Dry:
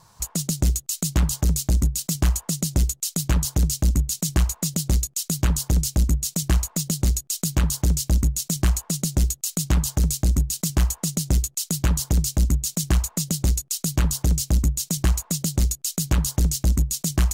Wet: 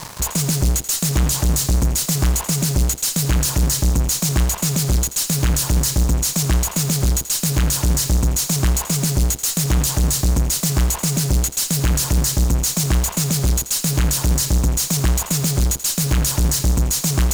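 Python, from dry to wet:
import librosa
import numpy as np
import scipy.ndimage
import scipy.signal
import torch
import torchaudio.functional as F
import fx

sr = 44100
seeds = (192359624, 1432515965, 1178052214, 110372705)

p1 = fx.fuzz(x, sr, gain_db=52.0, gate_db=-52.0)
p2 = x + (p1 * 10.0 ** (-5.5 / 20.0))
p3 = fx.echo_thinned(p2, sr, ms=84, feedback_pct=51, hz=340.0, wet_db=-12.5)
y = p3 * 10.0 ** (-2.5 / 20.0)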